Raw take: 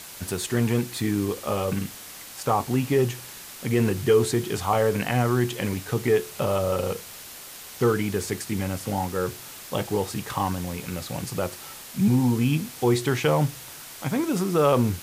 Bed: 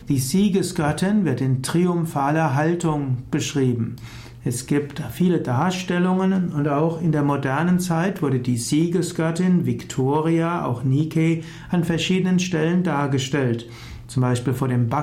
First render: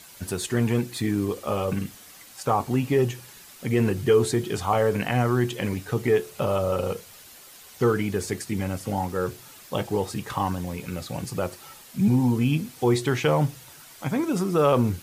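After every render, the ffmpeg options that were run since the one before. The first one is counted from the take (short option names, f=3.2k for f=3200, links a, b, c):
-af "afftdn=nr=8:nf=-42"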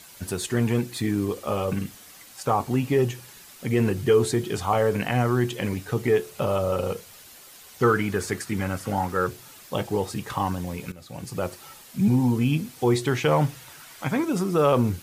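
-filter_complex "[0:a]asettb=1/sr,asplit=3[a][b][c];[a]atrim=end=7.834[d];[b]atrim=start=7.83:end=9.27,asetpts=PTS-STARTPTS,afade=t=in:d=0.004:c=qsin,afade=t=out:st=1.436:d=0.004:c=qsin,equalizer=f=1.4k:w=1.4:g=8[e];[c]atrim=start=9.266[f];[d][e]acrossfade=d=0.004:c1=hsin:c2=qsin[g];[g][f]acrossfade=d=0.004:c1=qsin:c2=hsin,asettb=1/sr,asplit=3[h][i][j];[h]atrim=end=13.314[k];[i]atrim=start=13.31:end=14.23,asetpts=PTS-STARTPTS,afade=t=in:d=0.004:c=qsin,afade=t=out:st=0.916:d=0.004:c=qsin,equalizer=f=1.7k:t=o:w=2.1:g=5[l];[j]atrim=start=14.226[m];[k][l]acrossfade=d=0.004:c1=hsin:c2=qsin[n];[n][m]acrossfade=d=0.004:c1=qsin:c2=hsin,asplit=2[o][p];[o]atrim=end=10.92,asetpts=PTS-STARTPTS,afade=t=out:st=10.916:d=0.004:c=hsin:silence=0.141254[q];[p]atrim=start=10.92,asetpts=PTS-STARTPTS,afade=t=in:d=0.54:silence=0.141254[r];[q][r]concat=n=2:v=0:a=1"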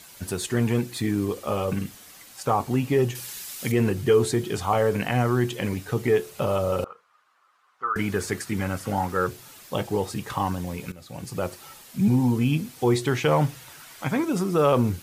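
-filter_complex "[0:a]asettb=1/sr,asplit=3[a][b][c];[a]atrim=end=3.154[d];[b]atrim=start=3.15:end=3.72,asetpts=PTS-STARTPTS,afade=t=in:d=0.004:c=qsin,afade=t=out:st=0.566:d=0.004:c=qsin,highshelf=f=2.2k:g=11.5[e];[c]atrim=start=3.716[f];[d][e]acrossfade=d=0.004:c1=hsin:c2=qsin[g];[g][f]acrossfade=d=0.004:c1=qsin:c2=hsin,asettb=1/sr,asplit=3[h][i][j];[h]atrim=end=6.844[k];[i]atrim=start=6.84:end=7.96,asetpts=PTS-STARTPTS,afade=t=in:d=0.004:c=qsin,afade=t=out:st=1.116:d=0.004:c=qsin,bandpass=f=1.2k:t=q:w=5.5[l];[j]atrim=start=7.956[m];[k][l]acrossfade=d=0.004:c1=hsin:c2=qsin[n];[n][m]acrossfade=d=0.004:c1=qsin:c2=hsin"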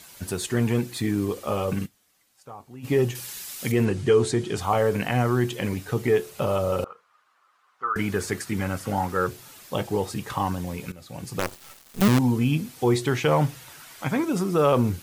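-filter_complex "[0:a]asettb=1/sr,asplit=3[a][b][c];[a]atrim=end=3.854[d];[b]atrim=start=3.85:end=4.57,asetpts=PTS-STARTPTS,afade=t=in:d=0.004:c=qsin,afade=t=out:st=0.716:d=0.004:c=qsin,lowpass=f=9.4k:w=0.5412,lowpass=f=9.4k:w=1.3066[e];[c]atrim=start=4.566[f];[d][e]acrossfade=d=0.004:c1=hsin:c2=qsin[g];[g][f]acrossfade=d=0.004:c1=qsin:c2=hsin,asettb=1/sr,asplit=3[h][i][j];[h]atrim=end=11.394[k];[i]atrim=start=11.39:end=12.19,asetpts=PTS-STARTPTS,afade=t=in:d=0.004:c=qsin,afade=t=out:st=0.796:d=0.004:c=qsin,acrusher=bits=4:dc=4:mix=0:aa=0.000001[l];[j]atrim=start=12.186[m];[k][l]acrossfade=d=0.004:c1=hsin:c2=qsin[n];[n][m]acrossfade=d=0.004:c1=qsin:c2=hsin,asplit=3[o][p][q];[o]atrim=end=1.98,asetpts=PTS-STARTPTS,afade=t=out:st=1.85:d=0.13:c=exp:silence=0.112202[r];[p]atrim=start=1.98:end=2.72,asetpts=PTS-STARTPTS,volume=-19dB[s];[q]atrim=start=2.72,asetpts=PTS-STARTPTS,afade=t=in:d=0.13:c=exp:silence=0.112202[t];[r][s][t]concat=n=3:v=0:a=1"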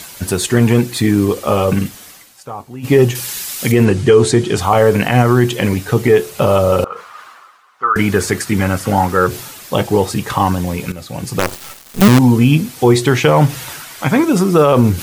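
-af "areverse,acompressor=mode=upward:threshold=-33dB:ratio=2.5,areverse,alimiter=level_in=12dB:limit=-1dB:release=50:level=0:latency=1"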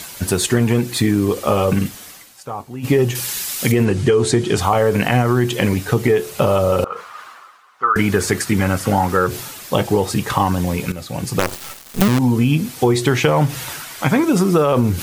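-af "acompressor=threshold=-11dB:ratio=6"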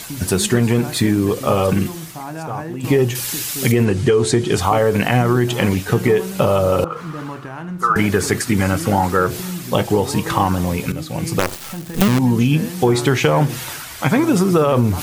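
-filter_complex "[1:a]volume=-10dB[a];[0:a][a]amix=inputs=2:normalize=0"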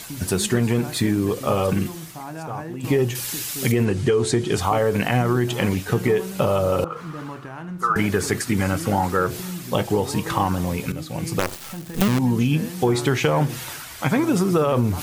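-af "volume=-4.5dB"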